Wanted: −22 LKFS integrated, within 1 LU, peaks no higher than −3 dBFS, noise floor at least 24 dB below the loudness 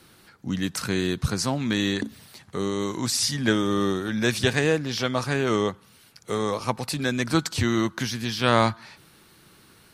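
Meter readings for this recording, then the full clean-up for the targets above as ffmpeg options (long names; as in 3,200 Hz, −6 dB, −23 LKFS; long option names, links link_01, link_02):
integrated loudness −25.0 LKFS; sample peak −4.0 dBFS; target loudness −22.0 LKFS
→ -af "volume=3dB,alimiter=limit=-3dB:level=0:latency=1"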